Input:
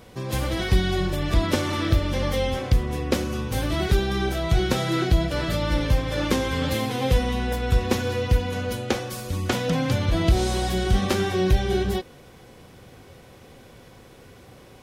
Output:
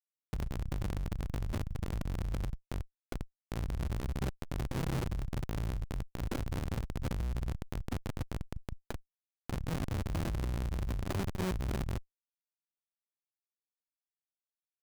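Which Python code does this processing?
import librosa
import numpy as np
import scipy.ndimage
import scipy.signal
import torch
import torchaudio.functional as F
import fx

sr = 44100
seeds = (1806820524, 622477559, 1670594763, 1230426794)

y = fx.comb(x, sr, ms=7.4, depth=0.4, at=(4.01, 5.56))
y = fx.lowpass(y, sr, hz=3700.0, slope=6, at=(6.98, 7.77))
y = fx.schmitt(y, sr, flips_db=-18.5)
y = np.repeat(y[::8], 8)[:len(y)]
y = fx.transformer_sat(y, sr, knee_hz=98.0)
y = F.gain(torch.from_numpy(y), -6.5).numpy()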